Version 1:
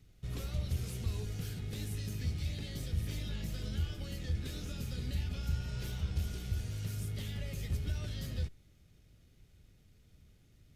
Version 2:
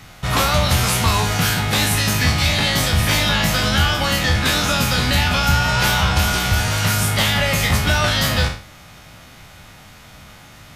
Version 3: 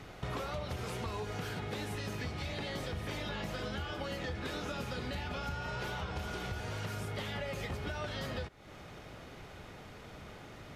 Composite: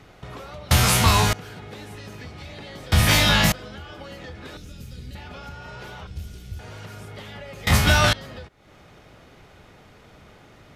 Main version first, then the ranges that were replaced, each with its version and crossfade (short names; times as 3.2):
3
0.71–1.33 from 2
2.92–3.52 from 2
4.57–5.15 from 1
6.07–6.59 from 1
7.67–8.13 from 2